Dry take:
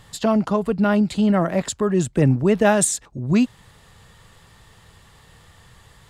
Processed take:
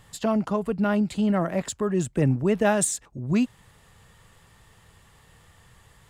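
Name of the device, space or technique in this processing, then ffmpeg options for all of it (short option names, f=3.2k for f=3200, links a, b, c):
exciter from parts: -filter_complex "[0:a]asplit=2[a][b];[b]highpass=2.2k,asoftclip=type=tanh:threshold=-29dB,highpass=f=3.1k:w=0.5412,highpass=f=3.1k:w=1.3066,volume=-9dB[c];[a][c]amix=inputs=2:normalize=0,volume=-5dB"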